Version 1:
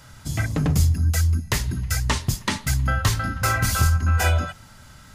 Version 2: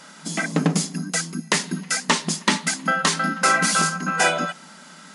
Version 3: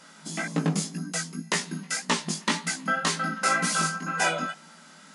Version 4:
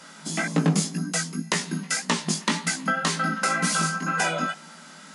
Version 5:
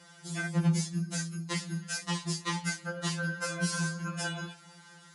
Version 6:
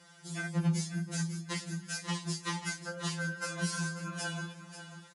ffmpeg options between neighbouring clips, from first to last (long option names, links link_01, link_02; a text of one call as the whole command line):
ffmpeg -i in.wav -af "afftfilt=real='re*between(b*sr/4096,160,11000)':imag='im*between(b*sr/4096,160,11000)':win_size=4096:overlap=0.75,volume=5.5dB" out.wav
ffmpeg -i in.wav -af "flanger=delay=17:depth=2.8:speed=1.9,volume=-3dB" out.wav
ffmpeg -i in.wav -filter_complex "[0:a]acrossover=split=230[link_01][link_02];[link_02]acompressor=threshold=-26dB:ratio=6[link_03];[link_01][link_03]amix=inputs=2:normalize=0,volume=5dB" out.wav
ffmpeg -i in.wav -af "afftfilt=real='re*2.83*eq(mod(b,8),0)':imag='im*2.83*eq(mod(b,8),0)':win_size=2048:overlap=0.75,volume=-7dB" out.wav
ffmpeg -i in.wav -af "aecho=1:1:540|1080|1620:0.282|0.0733|0.0191,volume=-3dB" out.wav